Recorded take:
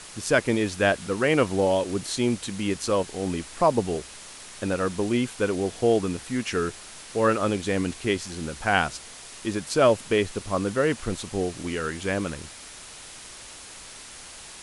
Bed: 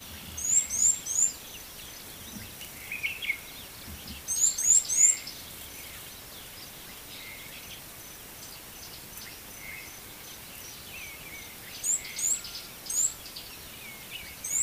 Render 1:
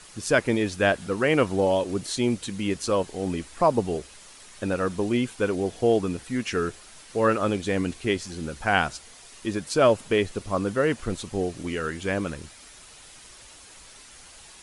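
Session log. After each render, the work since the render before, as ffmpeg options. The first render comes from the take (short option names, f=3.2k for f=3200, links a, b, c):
-af "afftdn=nr=7:nf=-43"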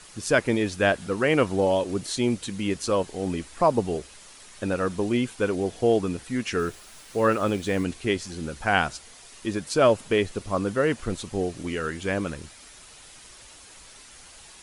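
-filter_complex "[0:a]asettb=1/sr,asplit=3[a][b][c];[a]atrim=end=6.594[d];[b]atrim=start=6.59:end=7.84,asetpts=PTS-STARTPTS,afade=t=in:d=0.004:c=qsin,afade=t=out:st=1.246:d=0.004:c=qsin,acrusher=bits=7:mix=0:aa=0.5[e];[c]atrim=start=7.836[f];[d][e]acrossfade=d=0.004:c1=hsin:c2=qsin[g];[g][f]acrossfade=d=0.004:c1=qsin:c2=hsin"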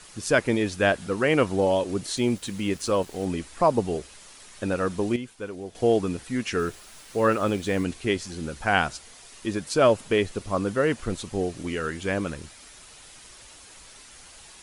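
-filter_complex "[0:a]asettb=1/sr,asplit=3[a][b][c];[a]atrim=end=2.174[d];[b]atrim=start=2.17:end=3.25,asetpts=PTS-STARTPTS,afade=t=in:d=0.004:c=qsin,afade=t=out:st=1.076:d=0.004:c=qsin,aeval=exprs='val(0)*gte(abs(val(0)),0.00596)':c=same[e];[c]atrim=start=3.246[f];[d][e]acrossfade=d=0.004:c1=hsin:c2=qsin[g];[g][f]acrossfade=d=0.004:c1=qsin:c2=hsin,asplit=3[h][i][j];[h]atrim=end=5.162[k];[i]atrim=start=5.158:end=5.752,asetpts=PTS-STARTPTS,volume=-10dB[l];[j]atrim=start=5.748[m];[k][l]acrossfade=d=0.004:c1=hsin:c2=hsin[n];[n][m]acrossfade=d=0.004:c1=hsin:c2=hsin"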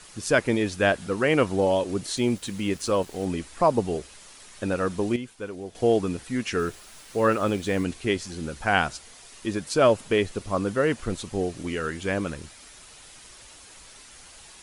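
-af anull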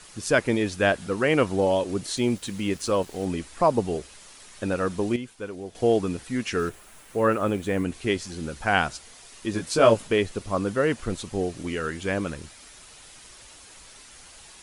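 -filter_complex "[0:a]asettb=1/sr,asplit=3[a][b][c];[a]atrim=end=6.694[d];[b]atrim=start=6.69:end=7.94,asetpts=PTS-STARTPTS,afade=t=in:d=0.004:c=qsin,afade=t=out:st=1.246:d=0.004:c=qsin,equalizer=f=4.8k:t=o:w=1.2:g=-9[e];[c]atrim=start=7.936[f];[d][e]acrossfade=d=0.004:c1=hsin:c2=qsin[g];[g][f]acrossfade=d=0.004:c1=qsin:c2=hsin,asettb=1/sr,asplit=3[h][i][j];[h]atrim=end=9.524[k];[i]atrim=start=9.52:end=10.07,asetpts=PTS-STARTPTS,afade=t=in:d=0.004:c=qsin,afade=t=out:st=0.546:d=0.004:c=qsin,asplit=2[l][m];[m]adelay=18,volume=-3dB[n];[l][n]amix=inputs=2:normalize=0,atrim=end_sample=24255[o];[j]atrim=start=10.066[p];[k][o]acrossfade=d=0.004:c1=hsin:c2=qsin[q];[q][p]acrossfade=d=0.004:c1=qsin:c2=hsin"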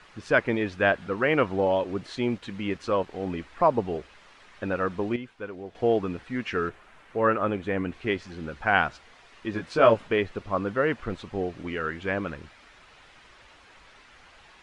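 -af "lowpass=2.1k,tiltshelf=f=800:g=-4"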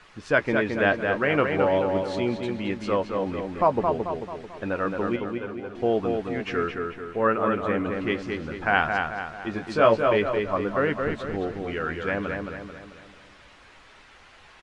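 -filter_complex "[0:a]asplit=2[a][b];[b]adelay=14,volume=-12dB[c];[a][c]amix=inputs=2:normalize=0,asplit=2[d][e];[e]adelay=220,lowpass=f=3.5k:p=1,volume=-4dB,asplit=2[f][g];[g]adelay=220,lowpass=f=3.5k:p=1,volume=0.49,asplit=2[h][i];[i]adelay=220,lowpass=f=3.5k:p=1,volume=0.49,asplit=2[j][k];[k]adelay=220,lowpass=f=3.5k:p=1,volume=0.49,asplit=2[l][m];[m]adelay=220,lowpass=f=3.5k:p=1,volume=0.49,asplit=2[n][o];[o]adelay=220,lowpass=f=3.5k:p=1,volume=0.49[p];[d][f][h][j][l][n][p]amix=inputs=7:normalize=0"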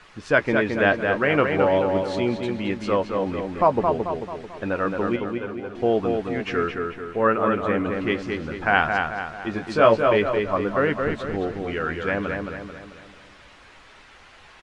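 -af "volume=2.5dB"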